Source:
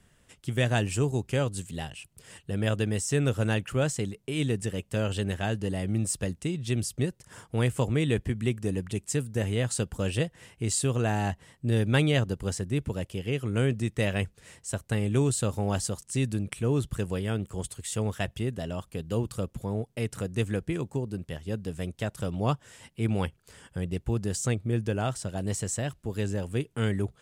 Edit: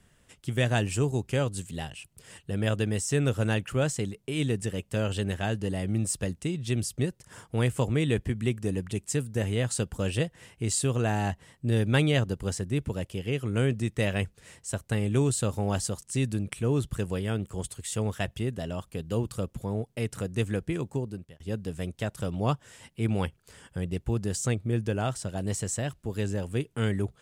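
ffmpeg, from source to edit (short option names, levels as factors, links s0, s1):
-filter_complex "[0:a]asplit=2[s0][s1];[s0]atrim=end=21.4,asetpts=PTS-STARTPTS,afade=t=out:st=21.02:d=0.38[s2];[s1]atrim=start=21.4,asetpts=PTS-STARTPTS,afade=t=in:d=0.004:c=hsin[s3];[s2][s3]concat=n=2:v=0:a=1"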